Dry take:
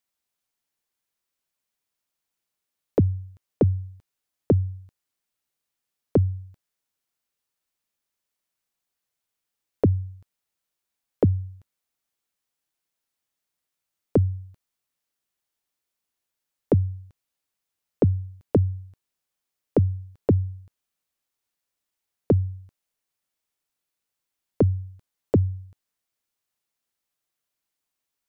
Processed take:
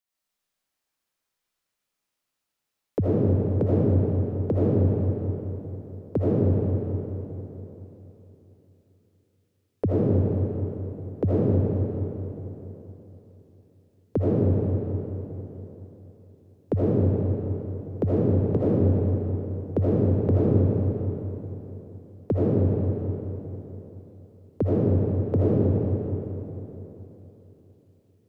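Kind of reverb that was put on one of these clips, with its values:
comb and all-pass reverb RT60 3.6 s, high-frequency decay 0.7×, pre-delay 40 ms, DRR −9.5 dB
level −6 dB

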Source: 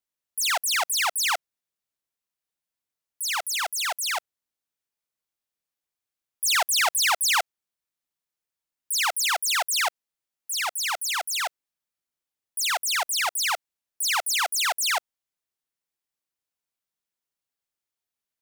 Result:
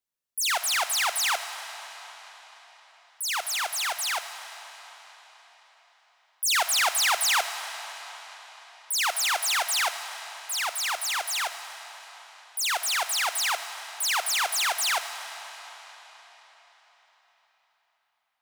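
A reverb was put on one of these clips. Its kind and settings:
comb and all-pass reverb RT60 4.8 s, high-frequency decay 0.9×, pre-delay 5 ms, DRR 8.5 dB
level −1.5 dB

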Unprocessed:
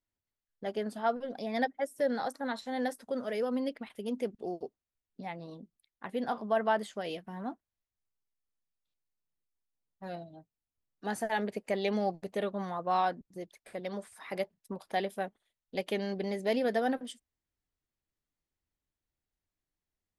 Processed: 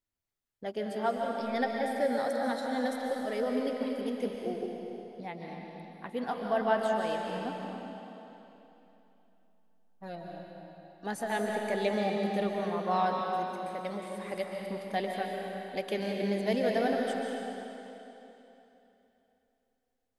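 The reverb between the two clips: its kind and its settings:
comb and all-pass reverb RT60 3.2 s, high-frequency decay 0.95×, pre-delay 100 ms, DRR 0 dB
level −1 dB

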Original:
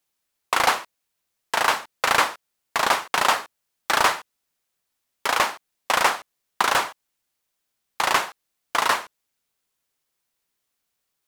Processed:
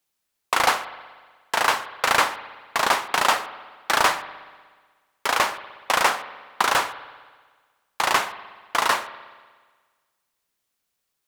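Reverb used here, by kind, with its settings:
spring reverb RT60 1.5 s, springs 60 ms, chirp 25 ms, DRR 13.5 dB

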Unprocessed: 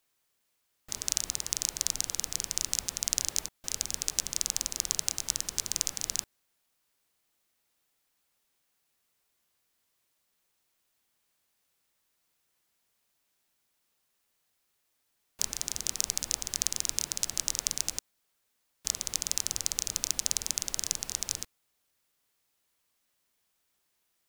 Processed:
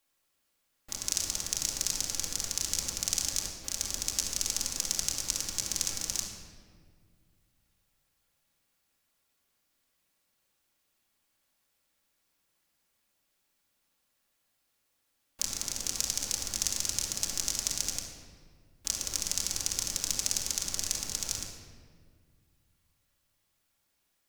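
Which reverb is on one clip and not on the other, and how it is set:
rectangular room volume 2,600 cubic metres, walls mixed, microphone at 2.3 metres
level −2.5 dB

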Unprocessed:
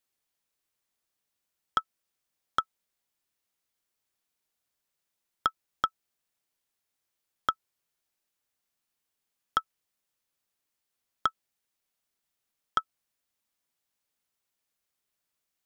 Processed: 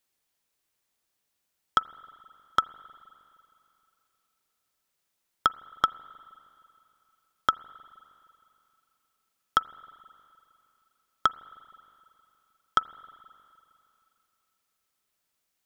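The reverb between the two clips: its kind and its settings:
spring reverb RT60 2.8 s, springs 39/43/52 ms, chirp 60 ms, DRR 18.5 dB
level +4 dB

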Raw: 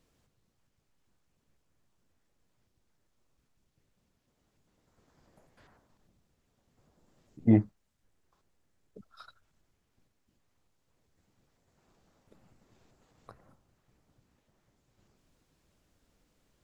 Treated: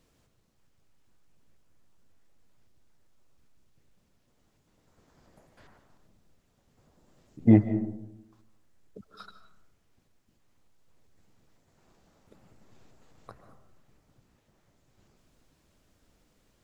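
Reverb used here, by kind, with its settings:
comb and all-pass reverb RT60 0.88 s, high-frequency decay 0.35×, pre-delay 105 ms, DRR 10.5 dB
level +4 dB

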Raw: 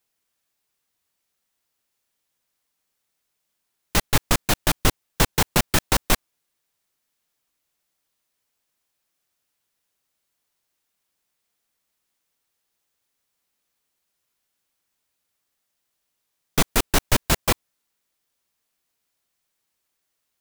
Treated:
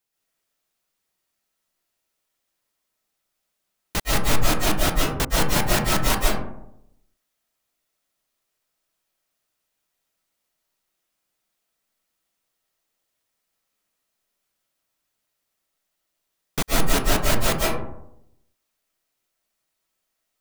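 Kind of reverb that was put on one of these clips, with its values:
comb and all-pass reverb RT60 0.81 s, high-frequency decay 0.35×, pre-delay 100 ms, DRR −5 dB
level −5.5 dB

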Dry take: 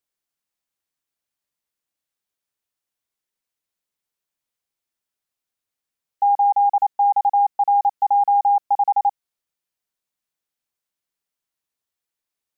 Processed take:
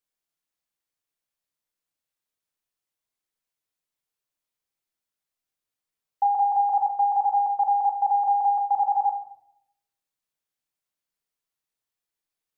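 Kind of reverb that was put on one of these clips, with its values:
rectangular room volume 210 cubic metres, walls mixed, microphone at 0.54 metres
level −3.5 dB

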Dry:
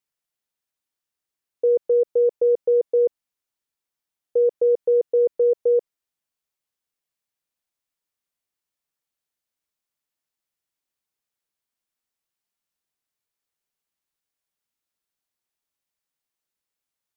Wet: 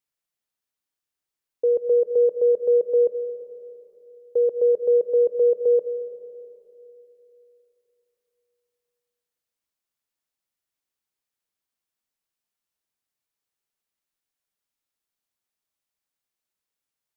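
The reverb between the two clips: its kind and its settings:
comb and all-pass reverb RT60 3.2 s, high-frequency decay 1×, pre-delay 60 ms, DRR 9 dB
level −1.5 dB

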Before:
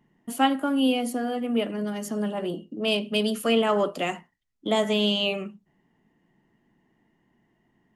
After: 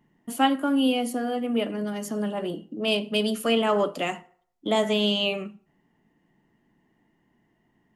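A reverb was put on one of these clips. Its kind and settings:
feedback delay network reverb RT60 0.6 s, low-frequency decay 0.85×, high-frequency decay 0.65×, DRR 16 dB

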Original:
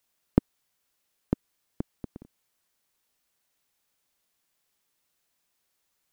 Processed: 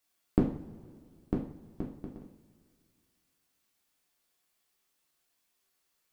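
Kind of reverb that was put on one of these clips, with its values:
coupled-rooms reverb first 0.47 s, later 2.3 s, from −19 dB, DRR −3 dB
level −5.5 dB

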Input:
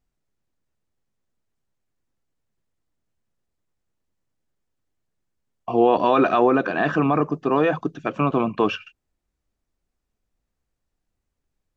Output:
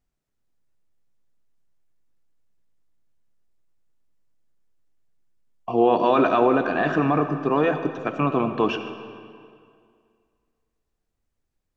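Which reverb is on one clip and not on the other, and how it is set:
comb and all-pass reverb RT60 2.2 s, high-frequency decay 0.8×, pre-delay 30 ms, DRR 8.5 dB
level −1.5 dB

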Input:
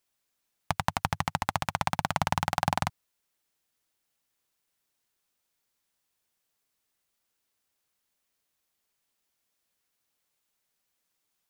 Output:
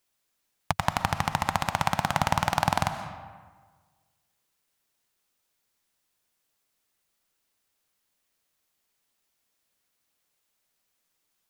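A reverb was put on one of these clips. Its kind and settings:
comb and all-pass reverb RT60 1.5 s, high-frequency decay 0.6×, pre-delay 85 ms, DRR 9 dB
level +2.5 dB

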